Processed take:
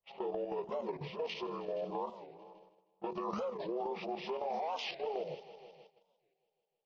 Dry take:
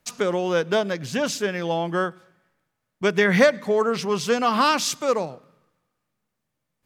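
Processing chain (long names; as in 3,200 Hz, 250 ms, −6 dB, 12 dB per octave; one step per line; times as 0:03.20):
partials spread apart or drawn together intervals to 75%
low-pass that shuts in the quiet parts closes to 1,500 Hz, open at −20 dBFS
bass and treble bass −6 dB, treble +15 dB
phaser with its sweep stopped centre 640 Hz, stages 4
output level in coarse steps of 15 dB
transient designer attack −2 dB, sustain +8 dB
parametric band 4,400 Hz −10 dB 2.2 octaves
downward compressor 3 to 1, threshold −37 dBFS, peak gain reduction 7.5 dB
mains-hum notches 60/120/180/240/300/360/420 Hz
echo machine with several playback heads 157 ms, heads all three, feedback 52%, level −21.5 dB
noise gate −59 dBFS, range −13 dB
wow of a warped record 45 rpm, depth 250 cents
level +1 dB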